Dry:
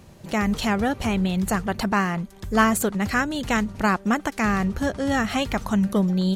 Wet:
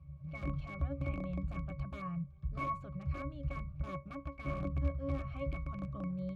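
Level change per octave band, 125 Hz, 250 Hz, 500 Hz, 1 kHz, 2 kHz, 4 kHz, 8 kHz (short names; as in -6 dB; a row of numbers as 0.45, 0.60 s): -9.5 dB, -20.0 dB, -17.5 dB, -19.0 dB, -24.0 dB, -30.0 dB, under -35 dB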